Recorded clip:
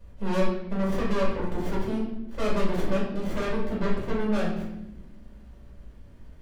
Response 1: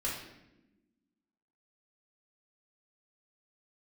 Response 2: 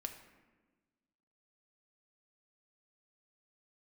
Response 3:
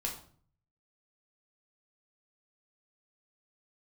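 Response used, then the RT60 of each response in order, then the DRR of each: 1; 1.0 s, 1.3 s, 0.50 s; -6.5 dB, 4.5 dB, -1.0 dB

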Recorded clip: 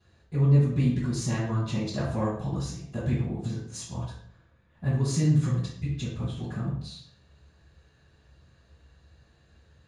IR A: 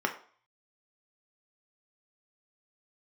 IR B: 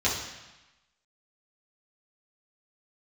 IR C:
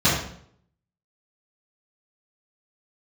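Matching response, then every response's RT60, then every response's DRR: C; 0.50 s, 1.0 s, 0.65 s; 2.5 dB, -8.5 dB, -12.0 dB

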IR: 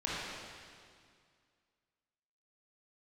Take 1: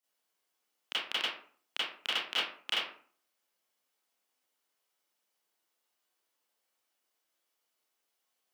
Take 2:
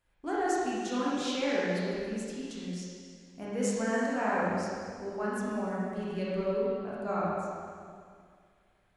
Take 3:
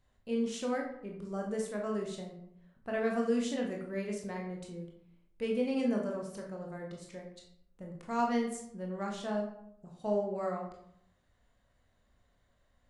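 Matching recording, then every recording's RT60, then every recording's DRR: 2; 0.50 s, 2.1 s, 0.70 s; -11.5 dB, -8.0 dB, -0.5 dB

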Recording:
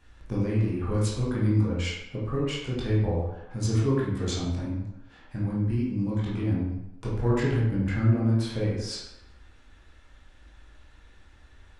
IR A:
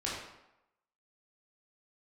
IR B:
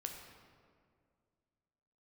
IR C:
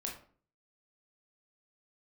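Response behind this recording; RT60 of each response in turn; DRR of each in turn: A; 0.90 s, 2.1 s, 0.45 s; -6.5 dB, 2.5 dB, -1.5 dB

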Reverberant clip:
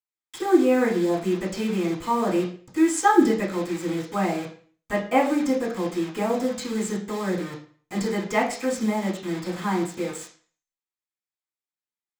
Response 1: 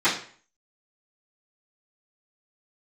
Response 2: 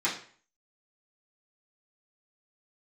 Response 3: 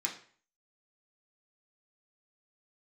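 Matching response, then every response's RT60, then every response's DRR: 2; 0.45 s, 0.45 s, 0.45 s; -18.5 dB, -11.0 dB, -2.5 dB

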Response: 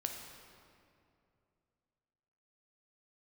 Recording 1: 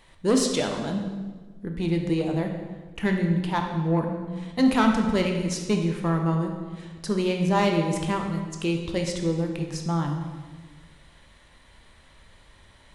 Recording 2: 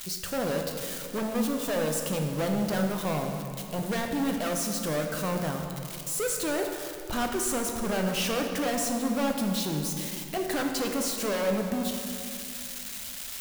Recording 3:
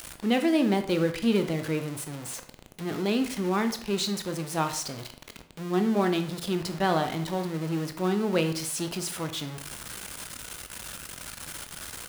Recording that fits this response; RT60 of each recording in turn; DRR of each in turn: 2; 1.4 s, 2.6 s, 0.55 s; 2.5 dB, 2.5 dB, 7.0 dB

